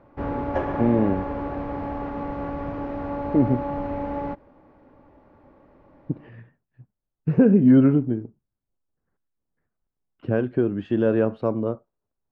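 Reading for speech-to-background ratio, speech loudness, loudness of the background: 8.5 dB, −21.5 LKFS, −30.0 LKFS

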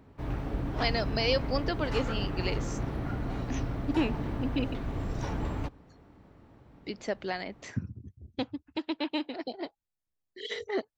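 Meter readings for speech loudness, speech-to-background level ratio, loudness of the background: −34.0 LKFS, 1.0 dB, −35.0 LKFS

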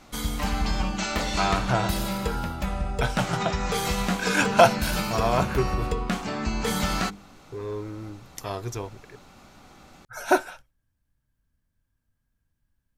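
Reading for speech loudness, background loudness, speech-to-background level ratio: −27.0 LKFS, −28.0 LKFS, 1.0 dB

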